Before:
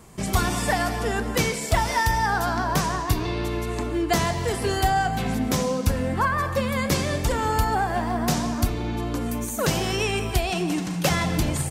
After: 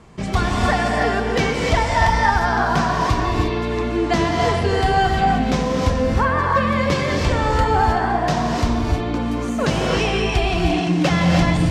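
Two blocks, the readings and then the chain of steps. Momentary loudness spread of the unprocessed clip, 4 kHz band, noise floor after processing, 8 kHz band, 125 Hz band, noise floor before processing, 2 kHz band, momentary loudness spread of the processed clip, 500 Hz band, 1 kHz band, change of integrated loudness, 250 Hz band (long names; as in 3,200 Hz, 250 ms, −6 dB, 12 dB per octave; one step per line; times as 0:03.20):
4 LU, +3.5 dB, −23 dBFS, −4.5 dB, +5.5 dB, −30 dBFS, +5.5 dB, 5 LU, +6.0 dB, +6.0 dB, +5.5 dB, +5.5 dB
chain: low-pass filter 4,300 Hz 12 dB per octave
reverb whose tail is shaped and stops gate 340 ms rising, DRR −0.5 dB
level +2.5 dB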